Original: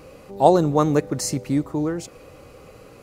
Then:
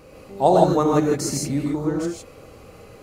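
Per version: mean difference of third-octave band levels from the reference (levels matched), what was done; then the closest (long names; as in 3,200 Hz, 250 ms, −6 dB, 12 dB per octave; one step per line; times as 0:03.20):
4.0 dB: reverb whose tail is shaped and stops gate 180 ms rising, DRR −1.5 dB
level −3 dB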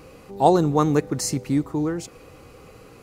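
1.0 dB: parametric band 580 Hz −8.5 dB 0.23 octaves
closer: second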